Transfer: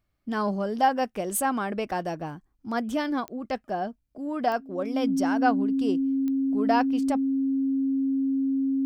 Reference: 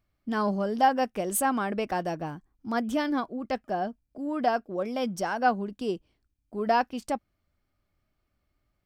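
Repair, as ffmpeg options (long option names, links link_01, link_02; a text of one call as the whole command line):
ffmpeg -i in.wav -af "adeclick=threshold=4,bandreject=frequency=270:width=30" out.wav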